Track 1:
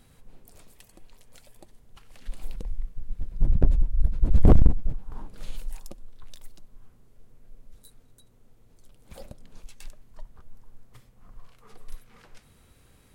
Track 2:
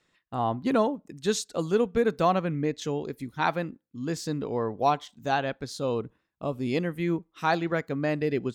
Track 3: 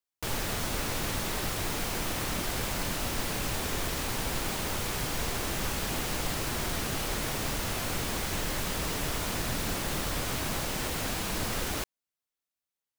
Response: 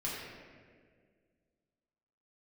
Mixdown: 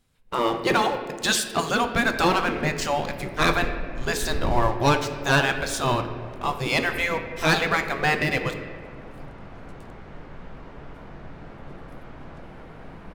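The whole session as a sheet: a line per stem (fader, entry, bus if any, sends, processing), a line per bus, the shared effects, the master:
-12.0 dB, 0.00 s, no send, dry
+2.0 dB, 0.00 s, send -8 dB, spectral gate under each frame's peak -10 dB weak; sample leveller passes 3
-12.0 dB, 1.75 s, send -4.5 dB, LPF 1500 Hz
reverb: on, RT60 1.9 s, pre-delay 4 ms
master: dry

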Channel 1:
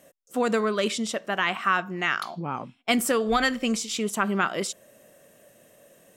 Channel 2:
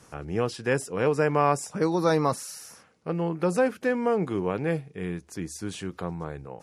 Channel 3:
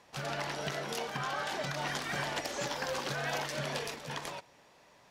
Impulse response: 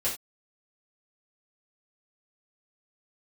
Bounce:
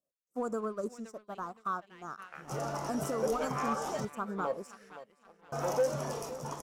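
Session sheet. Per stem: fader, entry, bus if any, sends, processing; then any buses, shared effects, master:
-6.5 dB, 0.00 s, bus A, no send, echo send -21.5 dB, upward expander 2.5:1, over -37 dBFS
-7.5 dB, 2.20 s, no bus, send -13 dB, echo send -13 dB, step gate "xxx.....x" 117 bpm -24 dB; wah 1.6 Hz 510–1900 Hz, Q 2.9; three-band squash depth 40%
-2.0 dB, 2.35 s, muted 4.05–5.52, bus A, send -22.5 dB, no echo send, dry
bus A: 0.0 dB, elliptic band-stop 1300–5500 Hz; limiter -28.5 dBFS, peak gain reduction 9 dB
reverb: on, pre-delay 3 ms
echo: feedback echo 0.519 s, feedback 40%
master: sample leveller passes 1

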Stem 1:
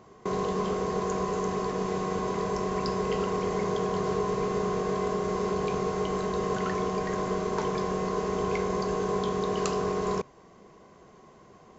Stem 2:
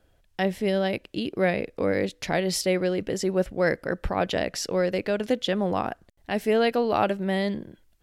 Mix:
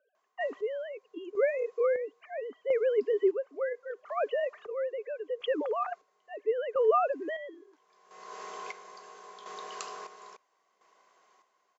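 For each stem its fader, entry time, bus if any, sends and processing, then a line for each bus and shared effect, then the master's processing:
-13.0 dB, 0.15 s, no send, AGC gain up to 8 dB; auto duck -23 dB, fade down 0.90 s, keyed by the second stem
-3.0 dB, 0.00 s, no send, sine-wave speech; tilt -4.5 dB/oct; small resonant body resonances 280/410/1200 Hz, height 14 dB, ringing for 45 ms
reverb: off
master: HPF 910 Hz 12 dB/oct; chopper 0.74 Hz, depth 60%, duty 45%

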